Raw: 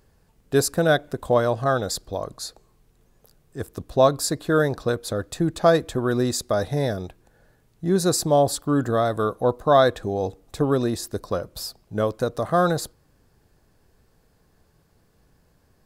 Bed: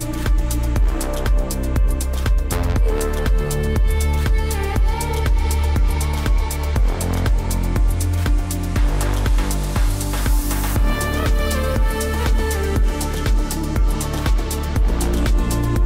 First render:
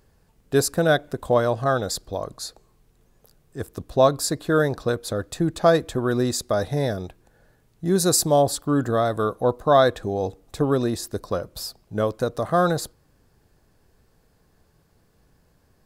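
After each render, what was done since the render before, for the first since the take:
0:07.85–0:08.42: high-shelf EQ 5,600 Hz +7.5 dB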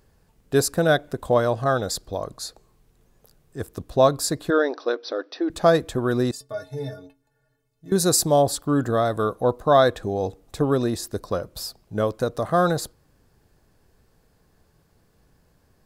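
0:04.50–0:05.50: linear-phase brick-wall band-pass 250–6,000 Hz
0:06.31–0:07.92: stiff-string resonator 130 Hz, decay 0.33 s, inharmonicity 0.03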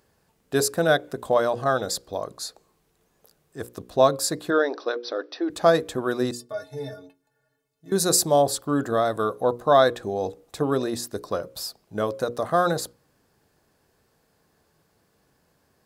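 high-pass filter 220 Hz 6 dB per octave
mains-hum notches 60/120/180/240/300/360/420/480/540 Hz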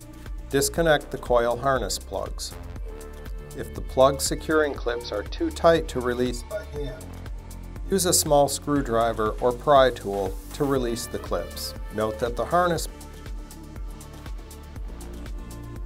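mix in bed −18.5 dB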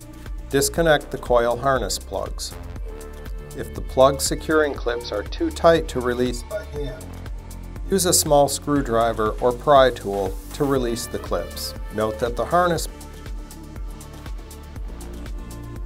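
level +3 dB

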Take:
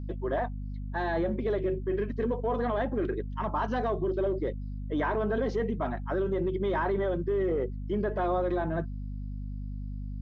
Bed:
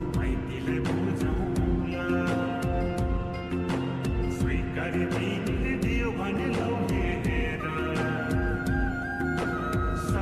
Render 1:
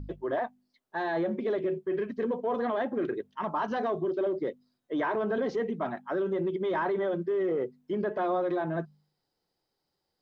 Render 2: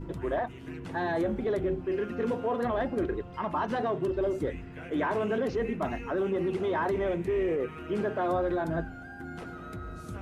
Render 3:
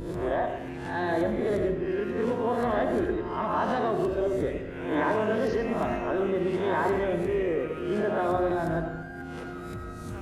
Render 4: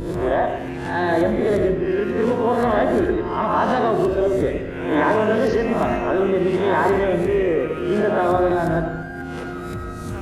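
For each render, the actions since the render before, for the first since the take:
hum removal 50 Hz, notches 5
mix in bed −12.5 dB
peak hold with a rise ahead of every peak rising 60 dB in 0.62 s; comb and all-pass reverb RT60 0.94 s, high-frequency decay 0.6×, pre-delay 45 ms, DRR 6 dB
level +8 dB

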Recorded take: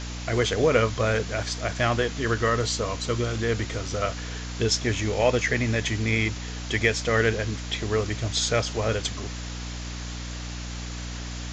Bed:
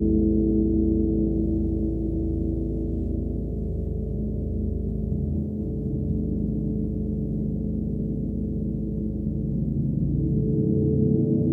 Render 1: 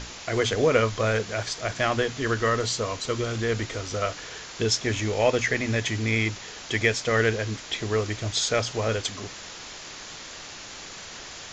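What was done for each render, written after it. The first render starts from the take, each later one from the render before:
mains-hum notches 60/120/180/240/300 Hz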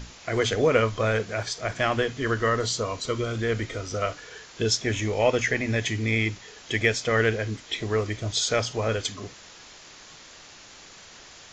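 noise reduction from a noise print 7 dB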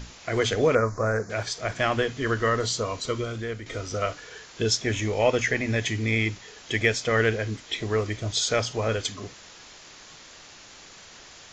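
0:00.75–0:01.30: Chebyshev band-stop filter 1,600–5,700 Hz
0:03.08–0:03.66: fade out, to −11 dB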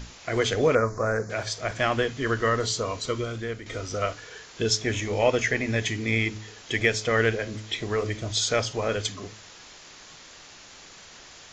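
hum removal 107.6 Hz, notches 6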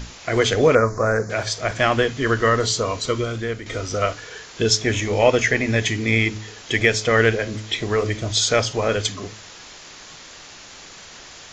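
level +6 dB
brickwall limiter −2 dBFS, peak gain reduction 1 dB

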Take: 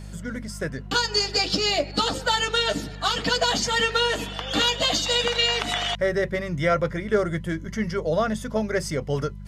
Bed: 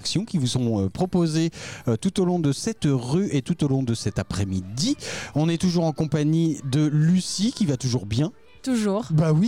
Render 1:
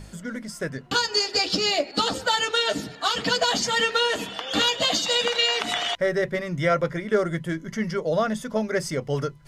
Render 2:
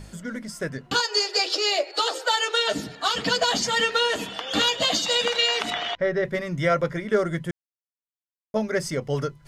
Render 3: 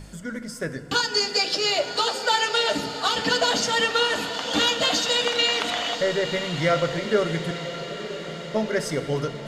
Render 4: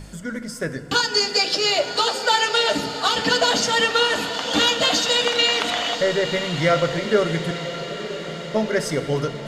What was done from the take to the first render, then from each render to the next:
hum removal 50 Hz, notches 4
0:01.00–0:02.68: Butterworth high-pass 340 Hz 72 dB per octave; 0:05.70–0:06.25: high-frequency loss of the air 160 metres; 0:07.51–0:08.54: silence
feedback delay with all-pass diffusion 964 ms, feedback 61%, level −10.5 dB; feedback delay network reverb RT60 1.8 s, low-frequency decay 1.3×, high-frequency decay 0.7×, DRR 10.5 dB
level +3 dB

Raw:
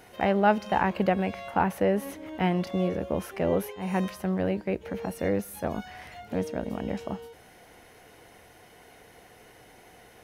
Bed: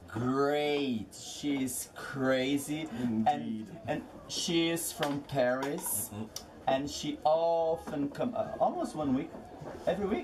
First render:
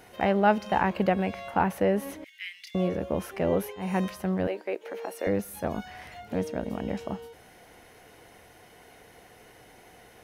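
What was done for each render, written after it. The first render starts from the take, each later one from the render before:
0:02.24–0:02.75: elliptic high-pass filter 2,000 Hz, stop band 60 dB
0:04.47–0:05.27: high-pass filter 350 Hz 24 dB per octave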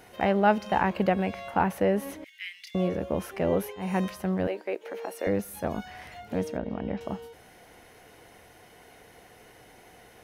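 0:06.57–0:07.01: high-frequency loss of the air 240 metres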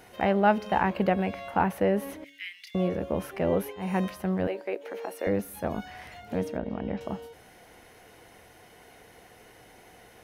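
hum removal 141.8 Hz, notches 5
dynamic equaliser 6,700 Hz, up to −4 dB, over −53 dBFS, Q 1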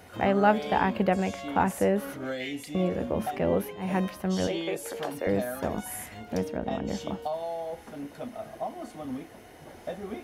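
mix in bed −5.5 dB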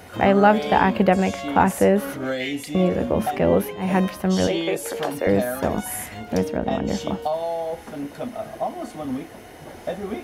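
level +7.5 dB
brickwall limiter −3 dBFS, peak gain reduction 2.5 dB

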